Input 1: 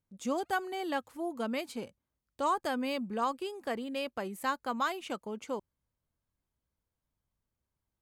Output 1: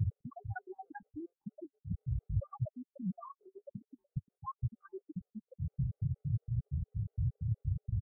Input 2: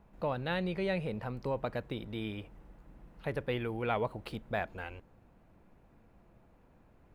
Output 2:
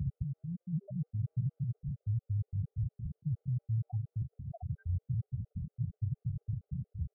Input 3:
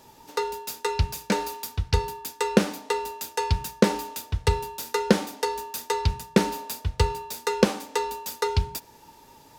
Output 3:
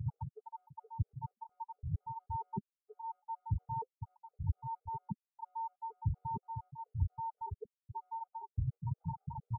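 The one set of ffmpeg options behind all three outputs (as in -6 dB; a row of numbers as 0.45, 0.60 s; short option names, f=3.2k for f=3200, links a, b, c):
-filter_complex "[0:a]aeval=exprs='val(0)+0.5*0.0891*sgn(val(0))':c=same,highpass=f=67:w=0.5412,highpass=f=67:w=1.3066,acrossover=split=870|1900[a][b][c];[a]acompressor=threshold=-35dB:ratio=4[d];[b]acompressor=threshold=-41dB:ratio=4[e];[c]acompressor=threshold=-33dB:ratio=4[f];[d][e][f]amix=inputs=3:normalize=0,equalizer=f=125:t=o:w=1:g=10,equalizer=f=250:t=o:w=1:g=-10,equalizer=f=500:t=o:w=1:g=-9,equalizer=f=1k:t=o:w=1:g=-5,equalizer=f=2k:t=o:w=1:g=-5,equalizer=f=4k:t=o:w=1:g=-11,asoftclip=type=tanh:threshold=-13dB,asplit=2[g][h];[h]adelay=506,lowpass=f=1k:p=1,volume=-14.5dB,asplit=2[i][j];[j]adelay=506,lowpass=f=1k:p=1,volume=0.26,asplit=2[k][l];[l]adelay=506,lowpass=f=1k:p=1,volume=0.26[m];[i][k][m]amix=inputs=3:normalize=0[n];[g][n]amix=inputs=2:normalize=0,afftfilt=real='re*gte(hypot(re,im),0.0794)':imag='im*gte(hypot(re,im),0.0794)':win_size=1024:overlap=0.75,areverse,acompressor=threshold=-33dB:ratio=8,areverse,lowpass=f=6.2k:w=0.5412,lowpass=f=6.2k:w=1.3066,flanger=delay=1.9:depth=5:regen=-48:speed=0.4:shape=sinusoidal,adynamicequalizer=threshold=0.00141:dfrequency=210:dqfactor=1.7:tfrequency=210:tqfactor=1.7:attack=5:release=100:ratio=0.375:range=2:mode=cutabove:tftype=bell,afftfilt=real='re*gt(sin(2*PI*4.3*pts/sr)*(1-2*mod(floor(b*sr/1024/390),2)),0)':imag='im*gt(sin(2*PI*4.3*pts/sr)*(1-2*mod(floor(b*sr/1024/390),2)),0)':win_size=1024:overlap=0.75,volume=9.5dB"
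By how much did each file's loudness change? -5.0, -1.5, -15.0 LU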